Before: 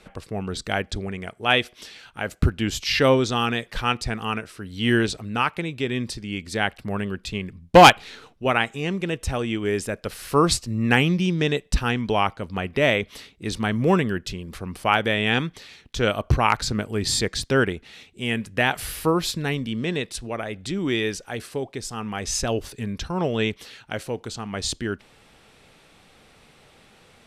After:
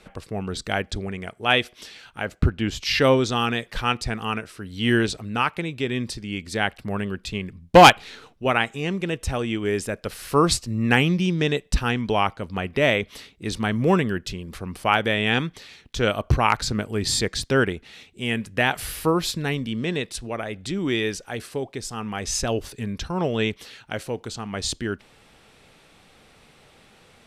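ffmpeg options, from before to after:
-filter_complex "[0:a]asettb=1/sr,asplit=3[a][b][c];[a]atrim=end=2.254[d];[b]atrim=start=2.25:end=2.83,asetpts=PTS-STARTPTS,afade=t=in:d=0.004:c=qsin,afade=t=out:st=0.576:d=0.004:c=qsin,highshelf=f=6.1k:g=-11.5[e];[c]atrim=start=2.826[f];[d][e]acrossfade=d=0.004:c1=hsin:c2=qsin[g];[g][f]acrossfade=d=0.004:c1=qsin:c2=hsin"

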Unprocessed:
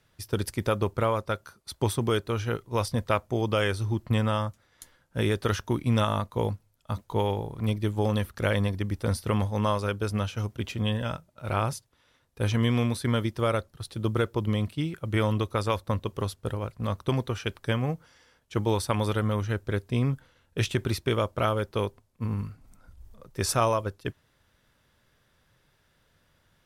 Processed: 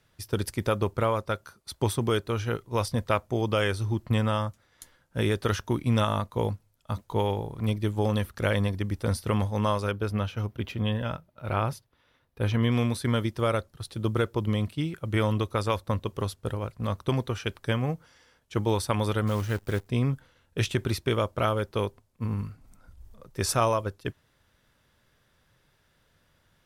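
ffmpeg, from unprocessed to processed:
-filter_complex "[0:a]asettb=1/sr,asplit=3[a][b][c];[a]atrim=end=9.914[d];[b]atrim=start=9.91:end=12.72,asetpts=PTS-STARTPTS,afade=t=in:d=0.004:c=qsin,afade=t=out:st=2.806:d=0.004:c=qsin,equalizer=f=7.6k:t=o:w=1.2:g=-10.5[e];[c]atrim=start=12.716[f];[d][e]acrossfade=d=0.004:c1=hsin:c2=qsin[g];[g][f]acrossfade=d=0.004:c1=qsin:c2=hsin,asettb=1/sr,asplit=3[h][i][j];[h]atrim=end=19.274[k];[i]atrim=start=19.27:end=19.87,asetpts=PTS-STARTPTS,afade=t=in:d=0.004:c=qsin,afade=t=out:st=0.596:d=0.004:c=qsin,acrusher=bits=8:dc=4:mix=0:aa=0.000001[l];[j]atrim=start=19.866[m];[k][l]acrossfade=d=0.004:c1=hsin:c2=qsin[n];[n][m]acrossfade=d=0.004:c1=qsin:c2=hsin"

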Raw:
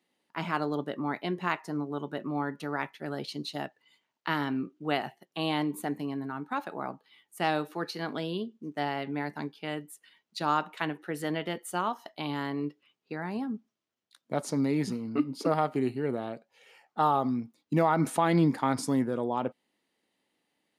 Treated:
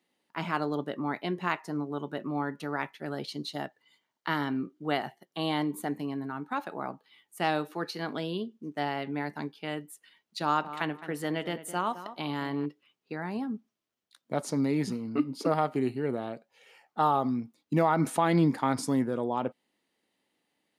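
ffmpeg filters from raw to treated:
-filter_complex "[0:a]asettb=1/sr,asplit=3[a][b][c];[a]atrim=end=3.264[d];[b]atrim=start=3.26:end=5.89,asetpts=PTS-STARTPTS,afade=t=in:d=0.004:c=qsin,afade=t=out:st=2.626:d=0.004:c=qsin,bandreject=f=2.6k:w=8.9[e];[c]atrim=start=5.886[f];[d][e]acrossfade=d=0.004:c1=hsin:c2=qsin[g];[g][f]acrossfade=d=0.004:c1=qsin:c2=hsin,asettb=1/sr,asplit=3[h][i][j];[h]atrim=end=10.434[k];[i]atrim=start=10.43:end=12.66,asetpts=PTS-STARTPTS,afade=t=in:d=0.004:c=qsin,afade=t=out:st=2.226:d=0.004:c=qsin,asplit=2[l][m];[m]adelay=213,lowpass=f=2k:p=1,volume=-12.5dB,asplit=2[n][o];[o]adelay=213,lowpass=f=2k:p=1,volume=0.24,asplit=2[p][q];[q]adelay=213,lowpass=f=2k:p=1,volume=0.24[r];[l][n][p][r]amix=inputs=4:normalize=0,atrim=end_sample=98343[s];[j]atrim=start=12.656[t];[k][s]acrossfade=d=0.004:c1=hsin:c2=qsin[u];[u][t]acrossfade=d=0.004:c1=qsin:c2=hsin"

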